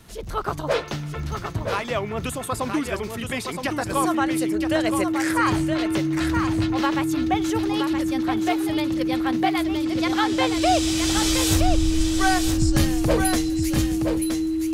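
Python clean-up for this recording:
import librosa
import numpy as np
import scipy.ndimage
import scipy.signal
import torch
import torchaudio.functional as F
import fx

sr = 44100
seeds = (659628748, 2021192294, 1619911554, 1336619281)

y = fx.fix_declick_ar(x, sr, threshold=6.5)
y = fx.notch(y, sr, hz=320.0, q=30.0)
y = fx.fix_echo_inverse(y, sr, delay_ms=970, level_db=-6.0)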